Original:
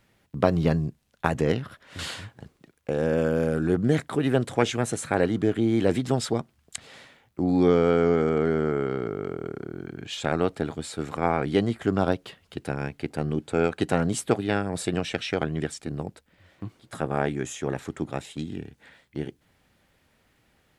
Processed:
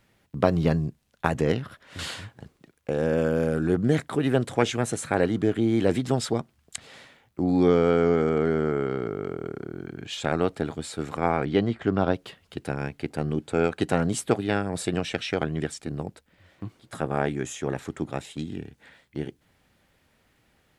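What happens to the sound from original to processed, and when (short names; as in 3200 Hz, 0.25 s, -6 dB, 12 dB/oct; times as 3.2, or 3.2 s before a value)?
11.45–12.14 LPF 4200 Hz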